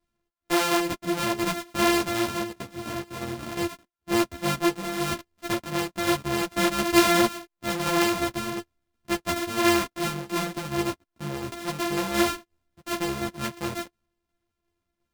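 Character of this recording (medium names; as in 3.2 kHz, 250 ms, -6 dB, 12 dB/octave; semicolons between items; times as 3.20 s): a buzz of ramps at a fixed pitch in blocks of 128 samples; tremolo saw down 2.8 Hz, depth 45%; a shimmering, thickened sound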